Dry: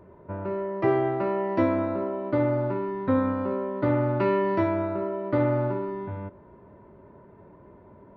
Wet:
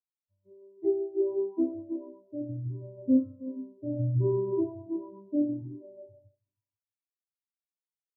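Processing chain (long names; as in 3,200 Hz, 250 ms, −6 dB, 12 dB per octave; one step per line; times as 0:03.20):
0:04.86–0:05.62: low shelf with overshoot 120 Hz −11 dB, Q 3
echo whose low-pass opens from repeat to repeat 162 ms, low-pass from 200 Hz, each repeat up 2 octaves, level −3 dB
every bin expanded away from the loudest bin 4 to 1
level −3.5 dB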